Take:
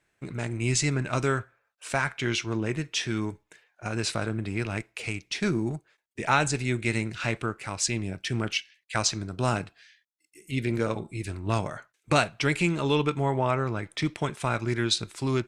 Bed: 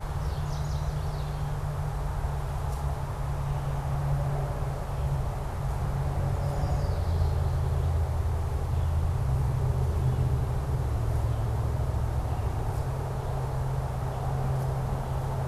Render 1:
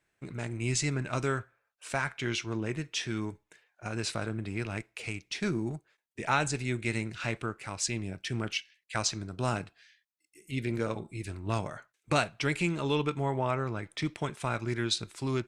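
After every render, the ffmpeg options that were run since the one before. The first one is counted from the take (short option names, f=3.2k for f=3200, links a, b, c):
-af "volume=-4.5dB"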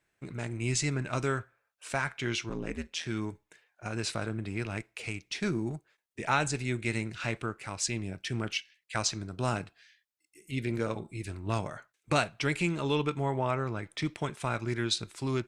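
-filter_complex "[0:a]asettb=1/sr,asplit=3[a][b][c];[a]atrim=end=2.494[d];[b]atrim=start=2.49:end=3.06,asetpts=PTS-STARTPTS,afade=t=in:d=0.004:c=qsin,afade=t=out:st=0.566:d=0.004:c=qsin,aeval=exprs='val(0)*sin(2*PI*83*n/s)':c=same[e];[c]atrim=start=3.056[f];[d][e]acrossfade=d=0.004:c1=hsin:c2=qsin[g];[g][f]acrossfade=d=0.004:c1=qsin:c2=hsin"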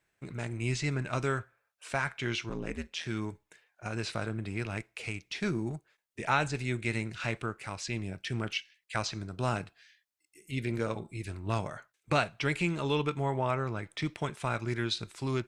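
-filter_complex "[0:a]acrossover=split=4700[a][b];[b]acompressor=threshold=-47dB:ratio=4:attack=1:release=60[c];[a][c]amix=inputs=2:normalize=0,equalizer=f=290:t=o:w=0.77:g=-2"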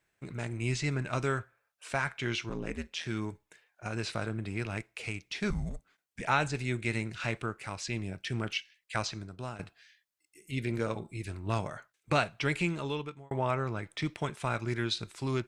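-filter_complex "[0:a]asettb=1/sr,asplit=3[a][b][c];[a]atrim=end=5.504[d];[b]atrim=start=5.5:end=6.21,asetpts=PTS-STARTPTS,afade=t=in:d=0.004:c=qsin,afade=t=out:st=0.706:d=0.004:c=qsin,afreqshift=-180[e];[c]atrim=start=6.206[f];[d][e]acrossfade=d=0.004:c1=hsin:c2=qsin[g];[g][f]acrossfade=d=0.004:c1=qsin:c2=hsin,asplit=3[h][i][j];[h]atrim=end=9.59,asetpts=PTS-STARTPTS,afade=t=out:st=9.01:d=0.58:silence=0.188365[k];[i]atrim=start=9.59:end=13.31,asetpts=PTS-STARTPTS,afade=t=in:d=0.004:c=hsin:silence=0.188365,afade=t=out:st=3.03:d=0.69[l];[j]atrim=start=13.31,asetpts=PTS-STARTPTS,afade=t=in:d=0.004:c=hsin[m];[k][l][m]concat=n=3:v=0:a=1"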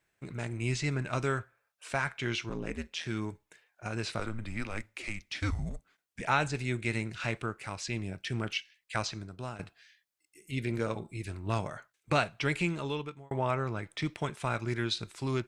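-filter_complex "[0:a]asettb=1/sr,asplit=3[a][b][c];[a]atrim=end=4.194[d];[b]atrim=start=4.19:end=5.59,asetpts=PTS-STARTPTS,afade=t=in:d=0.004:c=qsin,afade=t=out:st=1.396:d=0.004:c=qsin,afreqshift=-110[e];[c]atrim=start=5.586[f];[d][e]acrossfade=d=0.004:c1=hsin:c2=qsin[g];[g][f]acrossfade=d=0.004:c1=qsin:c2=hsin"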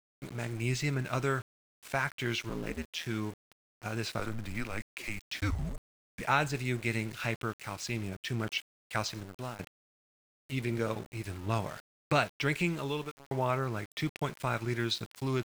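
-af "aeval=exprs='val(0)*gte(abs(val(0)),0.00668)':c=same"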